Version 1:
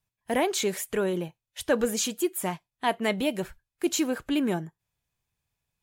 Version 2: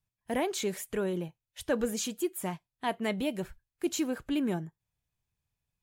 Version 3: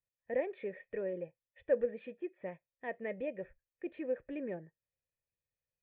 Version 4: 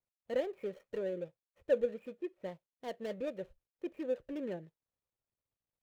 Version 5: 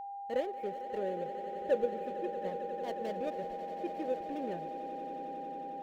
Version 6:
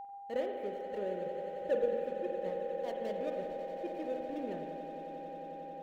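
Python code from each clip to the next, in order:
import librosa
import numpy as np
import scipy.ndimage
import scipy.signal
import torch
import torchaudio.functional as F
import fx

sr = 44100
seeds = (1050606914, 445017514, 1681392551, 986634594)

y1 = fx.low_shelf(x, sr, hz=240.0, db=6.5)
y1 = F.gain(torch.from_numpy(y1), -6.5).numpy()
y2 = fx.formant_cascade(y1, sr, vowel='e')
y2 = F.gain(torch.from_numpy(y2), 5.0).numpy()
y3 = scipy.ndimage.median_filter(y2, 25, mode='constant')
y3 = F.gain(torch.from_numpy(y3), 1.0).numpy()
y4 = fx.echo_swell(y3, sr, ms=90, loudest=8, wet_db=-15)
y4 = y4 + 10.0 ** (-40.0 / 20.0) * np.sin(2.0 * np.pi * 800.0 * np.arange(len(y4)) / sr)
y5 = fx.rev_spring(y4, sr, rt60_s=2.0, pass_ms=(44, 48), chirp_ms=80, drr_db=3.0)
y5 = F.gain(torch.from_numpy(y5), -2.5).numpy()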